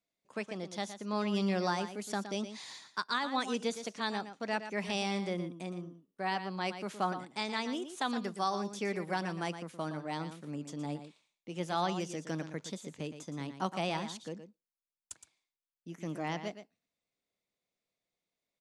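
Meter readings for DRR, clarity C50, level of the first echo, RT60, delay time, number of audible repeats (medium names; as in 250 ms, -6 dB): no reverb, no reverb, -10.5 dB, no reverb, 117 ms, 1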